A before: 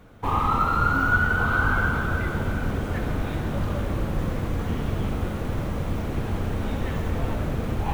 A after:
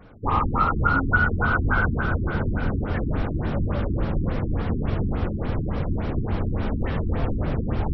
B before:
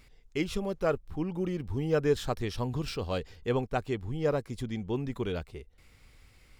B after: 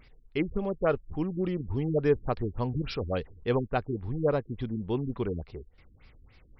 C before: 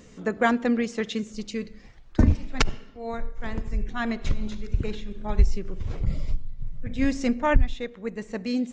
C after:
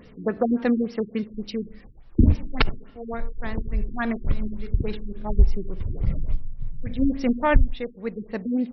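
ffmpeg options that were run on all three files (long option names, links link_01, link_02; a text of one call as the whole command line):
ffmpeg -i in.wav -af "afftfilt=real='re*lt(b*sr/1024,380*pow(5900/380,0.5+0.5*sin(2*PI*3.5*pts/sr)))':imag='im*lt(b*sr/1024,380*pow(5900/380,0.5+0.5*sin(2*PI*3.5*pts/sr)))':win_size=1024:overlap=0.75,volume=2dB" out.wav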